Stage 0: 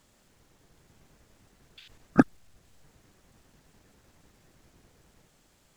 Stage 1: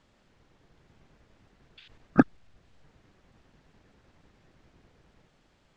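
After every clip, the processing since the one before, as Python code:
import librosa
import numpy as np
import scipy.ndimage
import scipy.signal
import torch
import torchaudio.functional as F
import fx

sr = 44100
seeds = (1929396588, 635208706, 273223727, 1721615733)

y = scipy.signal.sosfilt(scipy.signal.butter(2, 3900.0, 'lowpass', fs=sr, output='sos'), x)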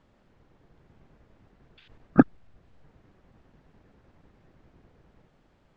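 y = fx.high_shelf(x, sr, hz=2200.0, db=-11.5)
y = y * 10.0 ** (3.0 / 20.0)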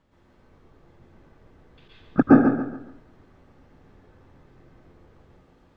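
y = fx.echo_feedback(x, sr, ms=140, feedback_pct=35, wet_db=-7.5)
y = fx.rev_plate(y, sr, seeds[0], rt60_s=0.55, hf_ratio=0.65, predelay_ms=105, drr_db=-7.0)
y = y * 10.0 ** (-3.0 / 20.0)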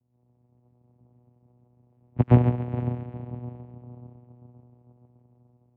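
y = fx.echo_diffused(x, sr, ms=475, feedback_pct=46, wet_db=-10.5)
y = fx.env_lowpass(y, sr, base_hz=400.0, full_db=-18.5)
y = fx.vocoder(y, sr, bands=4, carrier='saw', carrier_hz=122.0)
y = y * 10.0 ** (-2.5 / 20.0)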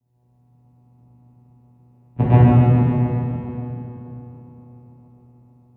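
y = fx.rev_plate(x, sr, seeds[1], rt60_s=2.6, hf_ratio=0.85, predelay_ms=0, drr_db=-9.0)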